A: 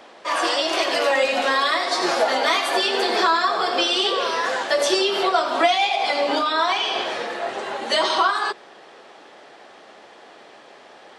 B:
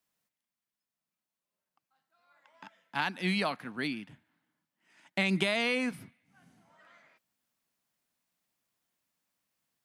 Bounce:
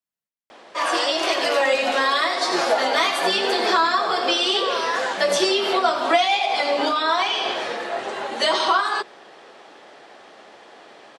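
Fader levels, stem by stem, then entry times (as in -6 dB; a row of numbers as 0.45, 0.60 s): 0.0, -10.5 dB; 0.50, 0.00 s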